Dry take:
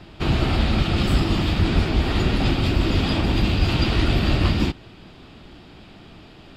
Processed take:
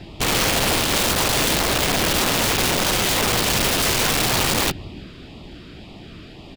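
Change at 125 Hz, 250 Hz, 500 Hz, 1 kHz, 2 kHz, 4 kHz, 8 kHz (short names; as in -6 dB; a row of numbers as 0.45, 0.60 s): -7.5, -3.5, +4.0, +6.5, +7.0, +7.5, +23.0 dB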